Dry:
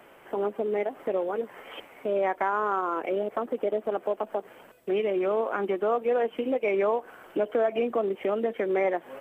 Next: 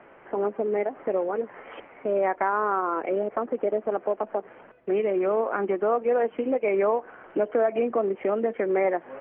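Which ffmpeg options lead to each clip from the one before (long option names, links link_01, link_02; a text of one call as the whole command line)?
ffmpeg -i in.wav -af "lowpass=frequency=2300:width=0.5412,lowpass=frequency=2300:width=1.3066,volume=2dB" out.wav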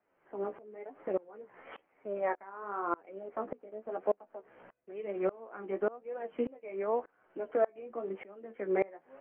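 ffmpeg -i in.wav -af "flanger=delay=9.2:depth=7.4:regen=29:speed=0.97:shape=triangular,aeval=exprs='val(0)*pow(10,-26*if(lt(mod(-1.7*n/s,1),2*abs(-1.7)/1000),1-mod(-1.7*n/s,1)/(2*abs(-1.7)/1000),(mod(-1.7*n/s,1)-2*abs(-1.7)/1000)/(1-2*abs(-1.7)/1000))/20)':channel_layout=same" out.wav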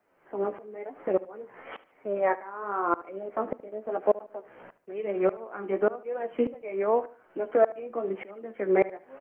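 ffmpeg -i in.wav -af "aecho=1:1:74|148|222:0.126|0.0403|0.0129,volume=7dB" out.wav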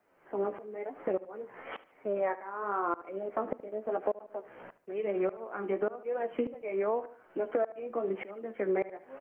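ffmpeg -i in.wav -af "acompressor=threshold=-27dB:ratio=6" out.wav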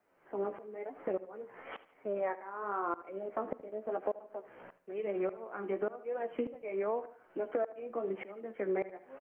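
ffmpeg -i in.wav -af "aecho=1:1:85|170|255:0.0841|0.0337|0.0135,volume=-3.5dB" out.wav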